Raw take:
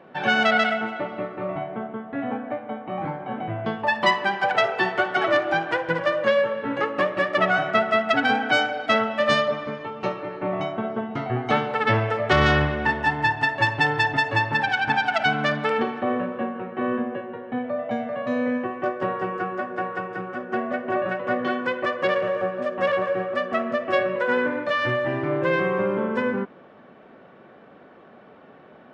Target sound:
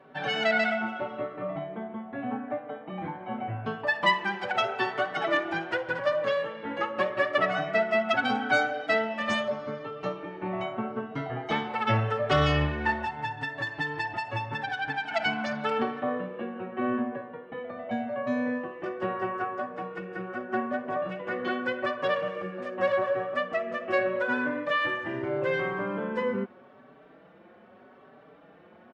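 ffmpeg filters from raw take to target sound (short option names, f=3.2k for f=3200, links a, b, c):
-filter_complex "[0:a]asettb=1/sr,asplit=3[a][b][c];[a]atrim=end=12.994[d];[b]atrim=start=12.99:end=15.11,asetpts=PTS-STARTPTS,afade=t=in:d=0.004:c=qsin,afade=t=out:st=2.116:d=0.004:c=qsin,acompressor=threshold=-25dB:ratio=3[e];[c]atrim=start=15.106[f];[d][e]acrossfade=d=0.004:c1=hsin:c2=qsin[g];[g][f]acrossfade=d=0.004:c1=qsin:c2=hsin,asplit=2[h][i];[i]adelay=4.8,afreqshift=0.82[j];[h][j]amix=inputs=2:normalize=1,volume=-2dB"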